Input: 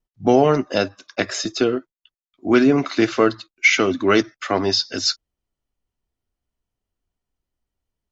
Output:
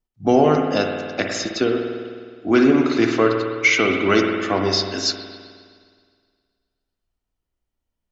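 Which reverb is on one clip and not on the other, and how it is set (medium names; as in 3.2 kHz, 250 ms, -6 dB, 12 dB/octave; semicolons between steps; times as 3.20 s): spring tank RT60 1.9 s, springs 52 ms, chirp 80 ms, DRR 2.5 dB; trim -1.5 dB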